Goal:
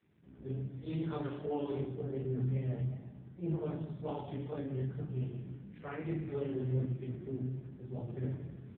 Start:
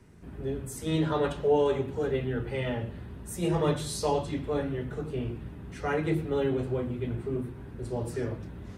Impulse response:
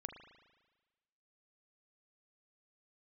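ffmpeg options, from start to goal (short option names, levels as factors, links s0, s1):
-filter_complex "[1:a]atrim=start_sample=2205,asetrate=52920,aresample=44100[s0];[0:a][s0]afir=irnorm=-1:irlink=0,aeval=exprs='0.106*(cos(1*acos(clip(val(0)/0.106,-1,1)))-cos(1*PI/2))+0.00531*(cos(4*acos(clip(val(0)/0.106,-1,1)))-cos(4*PI/2))':c=same,adynamicequalizer=threshold=0.00447:dfrequency=190:dqfactor=0.83:tfrequency=190:tqfactor=0.83:attack=5:release=100:ratio=0.375:range=2.5:mode=boostabove:tftype=bell,asettb=1/sr,asplit=3[s1][s2][s3];[s1]atrim=end=1.864[s4];[s2]atrim=start=1.86:end=4.07,asetpts=PTS-STARTPTS,afade=t=in:d=0.004:c=qsin,afade=t=out:st=2.206:d=0.004:c=qsin,lowpass=f=1000:p=1[s5];[s3]atrim=start=4.066[s6];[s4][s5]acrossfade=d=0.004:c1=hsin:c2=qsin[s7];[s7][s6]acrossfade=d=0.004:c1=qsin:c2=hsin,equalizer=f=680:w=0.38:g=-4,asplit=2[s8][s9];[s9]adelay=15,volume=0.335[s10];[s8][s10]amix=inputs=2:normalize=0,aecho=1:1:202|404|606:0.224|0.0627|0.0176,flanger=delay=17.5:depth=6.3:speed=2.6" -ar 8000 -c:a libopencore_amrnb -b:a 5900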